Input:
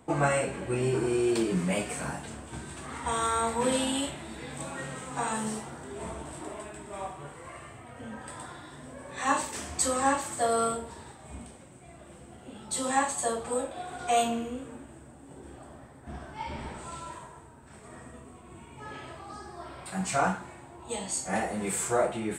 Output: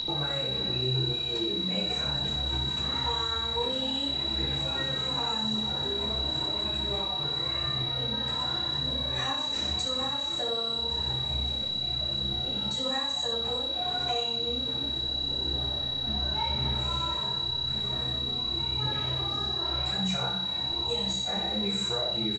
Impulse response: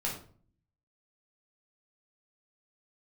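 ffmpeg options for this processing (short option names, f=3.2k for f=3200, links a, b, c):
-filter_complex "[0:a]lowshelf=f=340:g=4.5,bandreject=f=60:t=h:w=6,bandreject=f=120:t=h:w=6,bandreject=f=180:t=h:w=6,bandreject=f=240:t=h:w=6,bandreject=f=300:t=h:w=6,bandreject=f=360:t=h:w=6,acompressor=threshold=-39dB:ratio=6,aeval=exprs='val(0)+0.0316*sin(2*PI*3900*n/s)':c=same,aphaser=in_gain=1:out_gain=1:delay=4.7:decay=0.28:speed=0.9:type=triangular,aecho=1:1:15|76:0.668|0.398,asplit=2[a][b];[1:a]atrim=start_sample=2205[c];[b][c]afir=irnorm=-1:irlink=0,volume=-5.5dB[d];[a][d]amix=inputs=2:normalize=0,aresample=16000,aresample=44100"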